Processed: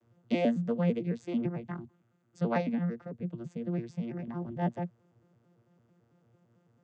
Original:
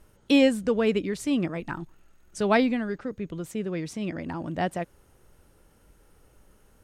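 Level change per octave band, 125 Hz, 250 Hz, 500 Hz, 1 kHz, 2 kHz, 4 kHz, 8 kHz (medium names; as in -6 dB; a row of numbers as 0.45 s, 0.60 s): +2.0 dB, -6.0 dB, -8.0 dB, -7.0 dB, -12.5 dB, under -15 dB, under -20 dB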